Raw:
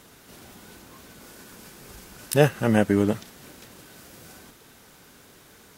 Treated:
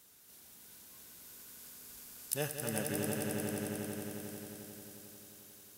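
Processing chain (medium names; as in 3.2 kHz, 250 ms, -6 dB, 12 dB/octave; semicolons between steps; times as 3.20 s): pre-emphasis filter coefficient 0.8; echo with a slow build-up 89 ms, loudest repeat 5, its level -7 dB; trim -6.5 dB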